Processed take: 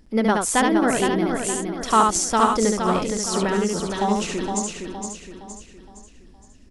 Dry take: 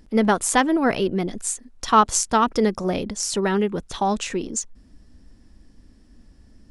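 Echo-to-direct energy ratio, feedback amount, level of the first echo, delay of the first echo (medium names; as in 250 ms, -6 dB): -0.5 dB, no regular repeats, -3.5 dB, 71 ms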